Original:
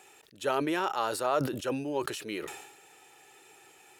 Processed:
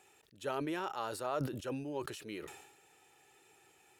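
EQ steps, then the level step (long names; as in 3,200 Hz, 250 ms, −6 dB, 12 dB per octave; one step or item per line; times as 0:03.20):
low-shelf EQ 150 Hz +10.5 dB
−9.0 dB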